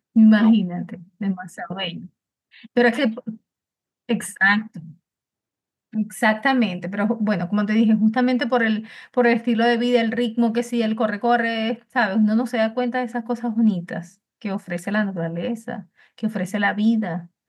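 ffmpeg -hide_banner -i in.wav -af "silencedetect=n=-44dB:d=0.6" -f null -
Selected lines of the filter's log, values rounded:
silence_start: 3.37
silence_end: 4.09 | silence_duration: 0.72
silence_start: 4.94
silence_end: 5.93 | silence_duration: 0.99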